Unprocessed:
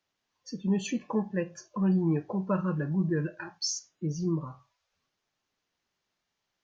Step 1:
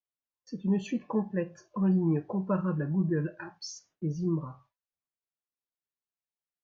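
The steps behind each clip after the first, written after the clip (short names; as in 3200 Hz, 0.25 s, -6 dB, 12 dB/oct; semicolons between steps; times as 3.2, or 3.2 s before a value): gate with hold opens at -48 dBFS; LPF 1800 Hz 6 dB/oct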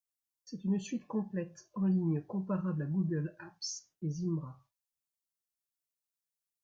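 tone controls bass +5 dB, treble +13 dB; gain -8 dB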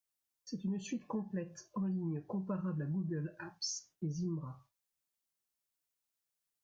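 compressor 6:1, threshold -37 dBFS, peak gain reduction 10.5 dB; gain +2.5 dB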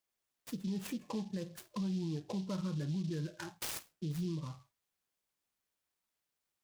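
limiter -32.5 dBFS, peak gain reduction 5 dB; noise-modulated delay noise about 4000 Hz, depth 0.061 ms; gain +2 dB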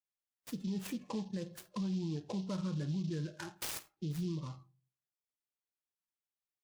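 darkening echo 85 ms, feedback 47%, low-pass 2500 Hz, level -20.5 dB; spectral noise reduction 14 dB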